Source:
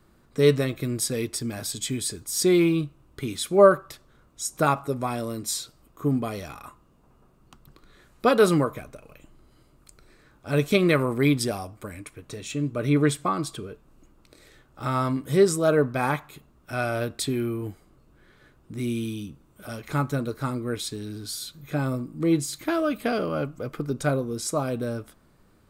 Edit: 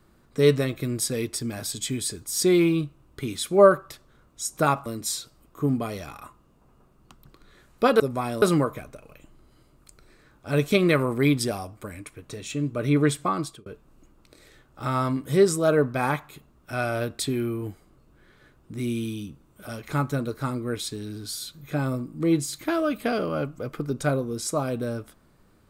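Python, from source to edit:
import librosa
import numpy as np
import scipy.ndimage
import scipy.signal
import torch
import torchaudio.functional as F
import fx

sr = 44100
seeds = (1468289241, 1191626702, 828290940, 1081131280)

y = fx.edit(x, sr, fx.move(start_s=4.86, length_s=0.42, to_s=8.42),
    fx.fade_out_span(start_s=13.4, length_s=0.26), tone=tone)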